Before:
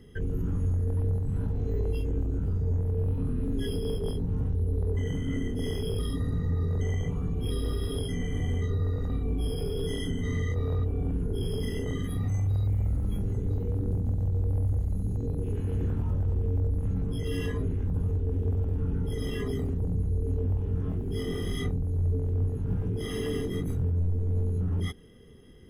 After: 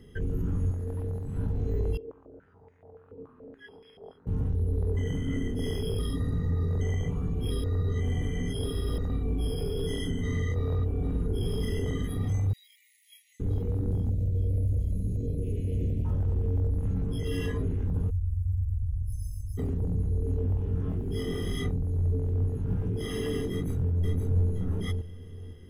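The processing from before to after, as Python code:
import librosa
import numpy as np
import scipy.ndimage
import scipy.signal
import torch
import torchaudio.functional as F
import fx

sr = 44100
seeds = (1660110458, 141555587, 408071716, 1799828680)

y = fx.low_shelf(x, sr, hz=160.0, db=-8.0, at=(0.71, 1.37))
y = fx.filter_held_bandpass(y, sr, hz=7.0, low_hz=450.0, high_hz=2100.0, at=(1.97, 4.27))
y = fx.echo_throw(y, sr, start_s=10.6, length_s=0.86, ms=430, feedback_pct=75, wet_db=-10.0)
y = fx.brickwall_highpass(y, sr, low_hz=1800.0, at=(12.53, 13.4))
y = fx.cheby1_bandstop(y, sr, low_hz=610.0, high_hz=2200.0, order=3, at=(14.09, 16.05))
y = fx.cheby2_bandstop(y, sr, low_hz=210.0, high_hz=3500.0, order=4, stop_db=40, at=(18.09, 19.57), fade=0.02)
y = fx.echo_throw(y, sr, start_s=23.51, length_s=0.98, ms=520, feedback_pct=25, wet_db=-4.0)
y = fx.edit(y, sr, fx.reverse_span(start_s=7.64, length_s=1.34), tone=tone)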